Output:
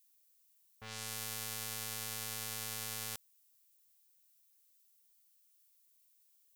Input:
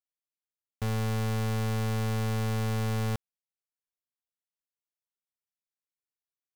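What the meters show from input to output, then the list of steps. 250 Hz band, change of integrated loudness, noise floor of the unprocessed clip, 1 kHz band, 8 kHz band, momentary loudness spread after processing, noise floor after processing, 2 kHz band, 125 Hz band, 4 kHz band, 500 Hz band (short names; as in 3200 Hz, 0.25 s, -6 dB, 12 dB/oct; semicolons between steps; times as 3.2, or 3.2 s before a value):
-22.5 dB, -9.5 dB, under -85 dBFS, -12.0 dB, +5.0 dB, 6 LU, -70 dBFS, -6.5 dB, -24.5 dB, -0.5 dB, -17.5 dB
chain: pre-emphasis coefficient 0.97; low-pass opened by the level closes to 1100 Hz, open at -44.5 dBFS; added noise violet -75 dBFS; gain +5 dB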